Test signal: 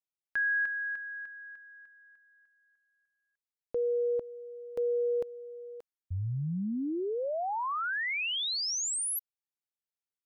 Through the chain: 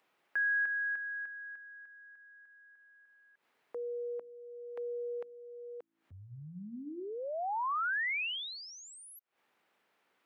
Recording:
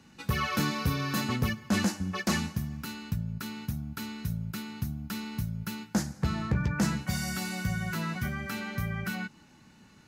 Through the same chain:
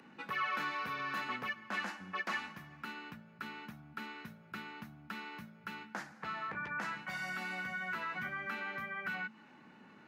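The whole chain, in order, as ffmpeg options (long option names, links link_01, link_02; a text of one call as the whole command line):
ffmpeg -i in.wav -filter_complex "[0:a]acrossover=split=170 2700:gain=0.158 1 0.0708[link_01][link_02][link_03];[link_01][link_02][link_03]amix=inputs=3:normalize=0,acrossover=split=880[link_04][link_05];[link_04]acompressor=threshold=-44dB:ratio=4:attack=1.3:release=566:knee=1:detection=rms[link_06];[link_06][link_05]amix=inputs=2:normalize=0,bandreject=frequency=55.01:width_type=h:width=4,bandreject=frequency=110.02:width_type=h:width=4,bandreject=frequency=165.03:width_type=h:width=4,bandreject=frequency=220.04:width_type=h:width=4,bandreject=frequency=275.05:width_type=h:width=4,bandreject=frequency=330.06:width_type=h:width=4,asplit=2[link_07][link_08];[link_08]alimiter=level_in=10dB:limit=-24dB:level=0:latency=1:release=85,volume=-10dB,volume=-0.5dB[link_09];[link_07][link_09]amix=inputs=2:normalize=0,acompressor=mode=upward:threshold=-47dB:ratio=2.5:attack=0.56:release=145:knee=2.83:detection=peak,lowshelf=frequency=96:gain=-11.5,volume=-3.5dB" out.wav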